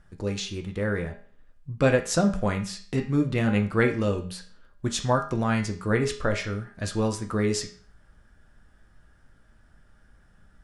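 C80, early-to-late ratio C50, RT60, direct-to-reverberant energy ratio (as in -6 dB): 15.0 dB, 11.0 dB, 0.45 s, 3.5 dB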